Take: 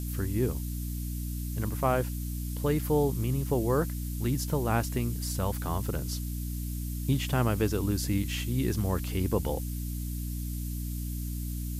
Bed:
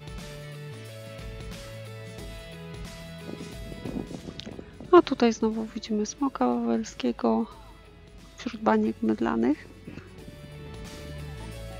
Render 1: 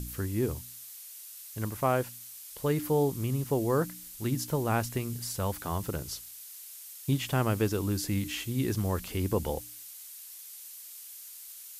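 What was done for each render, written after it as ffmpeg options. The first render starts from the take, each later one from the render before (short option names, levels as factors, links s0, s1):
-af "bandreject=f=60:t=h:w=4,bandreject=f=120:t=h:w=4,bandreject=f=180:t=h:w=4,bandreject=f=240:t=h:w=4,bandreject=f=300:t=h:w=4"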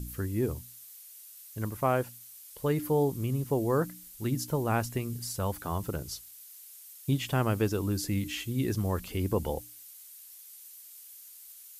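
-af "afftdn=nr=6:nf=-47"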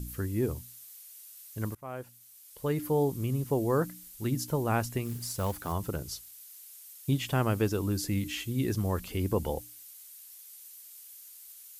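-filter_complex "[0:a]asettb=1/sr,asplit=3[s0][s1][s2];[s0]atrim=end=5.054[s3];[s1]atrim=start=5.05:end=5.73,asetpts=PTS-STARTPTS,afade=t=in:d=0.004:c=qsin,afade=t=out:st=0.676:d=0.004:c=qsin,acrusher=bits=4:mode=log:mix=0:aa=0.000001[s4];[s2]atrim=start=5.726[s5];[s3][s4]acrossfade=d=0.004:c1=hsin:c2=qsin[s6];[s6][s5]acrossfade=d=0.004:c1=qsin:c2=hsin,asplit=2[s7][s8];[s7]atrim=end=1.75,asetpts=PTS-STARTPTS,afade=t=out:st=1.746:d=0.004:c=hsin:silence=0.0749894[s9];[s8]atrim=start=1.75,asetpts=PTS-STARTPTS,afade=t=in:d=1.65:c=qsin:silence=0.0749894[s10];[s9][s10]concat=n=2:v=0:a=1"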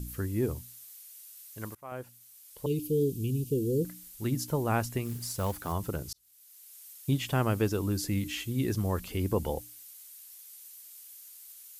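-filter_complex "[0:a]asettb=1/sr,asplit=3[s0][s1][s2];[s0]atrim=end=0.944[s3];[s1]atrim=start=0.94:end=1.92,asetpts=PTS-STARTPTS,afade=t=in:d=0.004:c=qsin,afade=t=out:st=0.976:d=0.004:c=qsin,lowshelf=f=360:g=-9[s4];[s2]atrim=start=1.916[s5];[s3][s4]acrossfade=d=0.004:c1=hsin:c2=qsin[s6];[s6][s5]acrossfade=d=0.004:c1=qsin:c2=hsin,asettb=1/sr,asplit=3[s7][s8][s9];[s7]atrim=end=2.664[s10];[s8]atrim=start=2.66:end=3.85,asetpts=PTS-STARTPTS,afade=t=in:d=0.004:c=qsin,afade=t=out:st=1.186:d=0.004:c=qsin,asuperstop=centerf=1100:order=20:qfactor=0.56[s11];[s9]atrim=start=3.846[s12];[s10][s11]acrossfade=d=0.004:c1=hsin:c2=qsin[s13];[s13][s12]acrossfade=d=0.004:c1=qsin:c2=hsin,asplit=2[s14][s15];[s14]atrim=end=6.13,asetpts=PTS-STARTPTS,afade=t=out:st=6.126:d=0.004:c=hsin[s16];[s15]atrim=start=6.13,asetpts=PTS-STARTPTS,afade=t=in:d=0.71[s17];[s16][s17]concat=n=2:v=0:a=1"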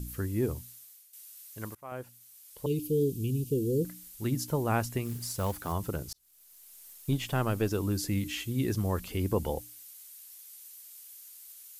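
-filter_complex "[0:a]asettb=1/sr,asplit=3[s0][s1][s2];[s0]atrim=end=6.054[s3];[s1]atrim=start=6.05:end=7.71,asetpts=PTS-STARTPTS,afade=t=in:d=0.004:c=qsin,afade=t=out:st=1.656:d=0.004:c=qsin,aeval=exprs='if(lt(val(0),0),0.708*val(0),val(0))':c=same[s4];[s2]atrim=start=7.706[s5];[s3][s4]acrossfade=d=0.004:c1=hsin:c2=qsin[s6];[s6][s5]acrossfade=d=0.004:c1=qsin:c2=hsin,asplit=2[s7][s8];[s7]atrim=end=1.13,asetpts=PTS-STARTPTS,afade=t=out:st=0.69:d=0.44:silence=0.251189[s9];[s8]atrim=start=1.13,asetpts=PTS-STARTPTS,afade=t=in:d=0.004:c=hsin:silence=0.251189[s10];[s9][s10]concat=n=2:v=0:a=1"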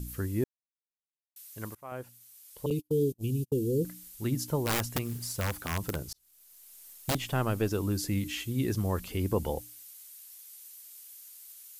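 -filter_complex "[0:a]asettb=1/sr,asplit=3[s0][s1][s2];[s0]atrim=end=2.704[s3];[s1]atrim=start=2.7:end=3.53,asetpts=PTS-STARTPTS,afade=t=in:d=0.004:c=qsin,afade=t=out:st=0.826:d=0.004:c=qsin,agate=range=0.00891:threshold=0.0224:ratio=16:release=100:detection=peak[s4];[s2]atrim=start=3.526[s5];[s3][s4]acrossfade=d=0.004:c1=hsin:c2=qsin[s6];[s6][s5]acrossfade=d=0.004:c1=qsin:c2=hsin,asettb=1/sr,asplit=3[s7][s8][s9];[s7]atrim=end=4.624[s10];[s8]atrim=start=4.62:end=7.15,asetpts=PTS-STARTPTS,afade=t=in:d=0.004:c=qsin,afade=t=out:st=2.526:d=0.004:c=qsin,aeval=exprs='(mod(14.1*val(0)+1,2)-1)/14.1':c=same[s11];[s9]atrim=start=7.146[s12];[s10][s11]acrossfade=d=0.004:c1=hsin:c2=qsin[s13];[s13][s12]acrossfade=d=0.004:c1=qsin:c2=hsin,asplit=3[s14][s15][s16];[s14]atrim=end=0.44,asetpts=PTS-STARTPTS,afade=t=out:st=0.436:d=0.004:c=hsin[s17];[s15]atrim=start=0.44:end=1.36,asetpts=PTS-STARTPTS,volume=0[s18];[s16]atrim=start=1.36,asetpts=PTS-STARTPTS,afade=t=in:d=0.004:c=hsin[s19];[s17][s18][s19]concat=n=3:v=0:a=1"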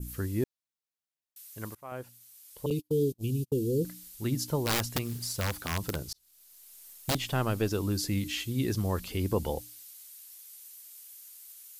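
-af "adynamicequalizer=threshold=0.00178:dfrequency=4300:dqfactor=1.4:tfrequency=4300:tqfactor=1.4:attack=5:release=100:ratio=0.375:range=2.5:mode=boostabove:tftype=bell"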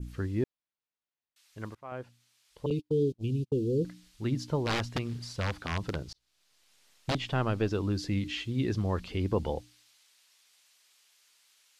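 -af "lowpass=3900"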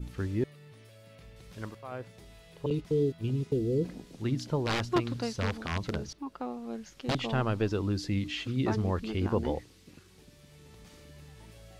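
-filter_complex "[1:a]volume=0.237[s0];[0:a][s0]amix=inputs=2:normalize=0"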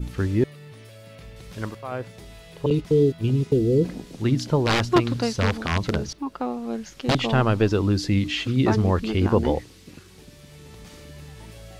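-af "volume=2.82"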